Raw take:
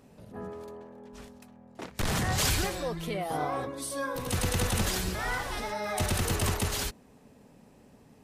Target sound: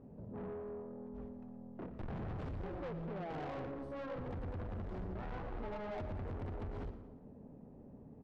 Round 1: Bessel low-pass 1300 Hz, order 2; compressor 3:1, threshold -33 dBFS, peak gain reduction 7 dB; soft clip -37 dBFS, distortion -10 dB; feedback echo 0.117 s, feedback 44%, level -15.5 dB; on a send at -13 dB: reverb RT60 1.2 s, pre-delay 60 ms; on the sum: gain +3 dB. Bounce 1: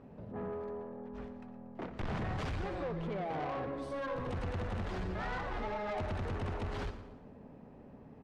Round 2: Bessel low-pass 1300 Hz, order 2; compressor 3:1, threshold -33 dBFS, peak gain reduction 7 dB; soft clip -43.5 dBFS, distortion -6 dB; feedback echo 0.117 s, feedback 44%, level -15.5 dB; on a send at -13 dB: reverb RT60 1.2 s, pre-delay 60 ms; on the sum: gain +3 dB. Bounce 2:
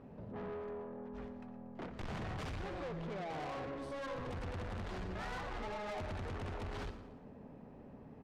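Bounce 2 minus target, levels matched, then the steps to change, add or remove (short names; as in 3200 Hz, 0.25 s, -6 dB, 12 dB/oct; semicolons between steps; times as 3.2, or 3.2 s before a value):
1000 Hz band +2.5 dB
change: Bessel low-pass 470 Hz, order 2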